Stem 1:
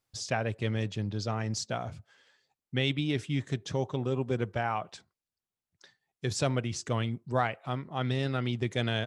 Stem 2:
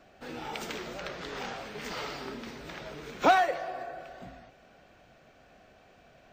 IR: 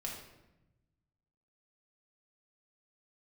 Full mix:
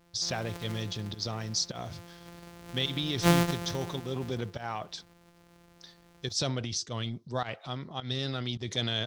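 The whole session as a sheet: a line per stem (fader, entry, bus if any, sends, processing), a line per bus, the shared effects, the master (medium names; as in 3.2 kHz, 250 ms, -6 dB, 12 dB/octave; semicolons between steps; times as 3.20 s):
-5.0 dB, 0.00 s, no send, high-order bell 4.5 kHz +12 dB 1.1 oct; transient shaper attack +1 dB, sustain +8 dB; volume shaper 105 bpm, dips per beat 1, -17 dB, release 135 ms
0.77 s -5.5 dB -> 1.17 s -13 dB -> 2.05 s -13 dB -> 2.84 s -1 dB, 0.00 s, no send, sorted samples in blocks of 256 samples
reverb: none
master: none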